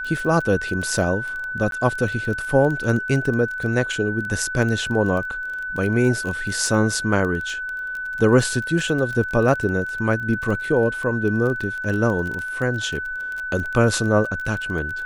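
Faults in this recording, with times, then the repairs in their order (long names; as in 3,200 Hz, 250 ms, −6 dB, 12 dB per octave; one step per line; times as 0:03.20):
surface crackle 21 per second −26 dBFS
whistle 1,500 Hz −26 dBFS
0:01.71–0:01.72: drop-out 12 ms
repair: click removal
notch filter 1,500 Hz, Q 30
repair the gap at 0:01.71, 12 ms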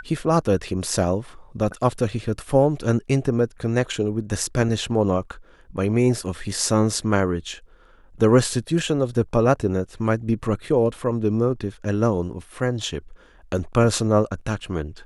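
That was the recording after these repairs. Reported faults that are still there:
none of them is left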